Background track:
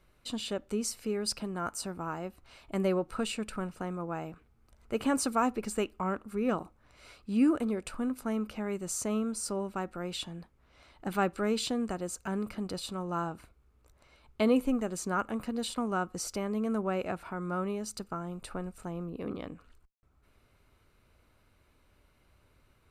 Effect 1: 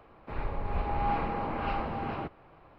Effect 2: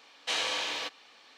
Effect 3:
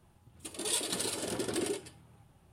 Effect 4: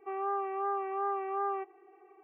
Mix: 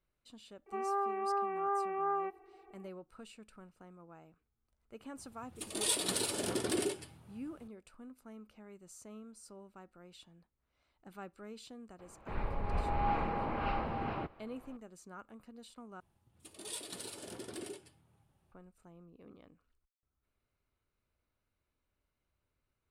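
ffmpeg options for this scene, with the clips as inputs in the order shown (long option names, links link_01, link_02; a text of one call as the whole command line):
ffmpeg -i bed.wav -i cue0.wav -i cue1.wav -i cue2.wav -i cue3.wav -filter_complex "[3:a]asplit=2[link_01][link_02];[0:a]volume=-19dB,asplit=2[link_03][link_04];[link_03]atrim=end=16.004[link_05];[link_02]atrim=end=2.52,asetpts=PTS-STARTPTS,volume=-11dB[link_06];[link_04]atrim=start=18.516[link_07];[4:a]atrim=end=2.23,asetpts=PTS-STARTPTS,volume=-1dB,afade=type=in:duration=0.004:curve=hsin,afade=type=out:start_time=2.226:duration=0.004:curve=hsin,adelay=660[link_08];[link_01]atrim=end=2.52,asetpts=PTS-STARTPTS,afade=type=in:duration=0.004:curve=hsin,afade=type=out:start_time=2.516:duration=0.004:curve=hsin,adelay=5160[link_09];[1:a]atrim=end=2.78,asetpts=PTS-STARTPTS,volume=-3dB,afade=type=in:duration=0.004:curve=hsin,afade=type=out:start_time=2.776:duration=0.004:curve=hsin,adelay=11990[link_10];[link_05][link_06]acrossfade=duration=0.004:curve1=hsin:curve2=hsin[link_11];[link_11][link_07]acrossfade=duration=0.004:curve1=hsin:curve2=hsin[link_12];[link_12][link_08][link_09][link_10]amix=inputs=4:normalize=0" out.wav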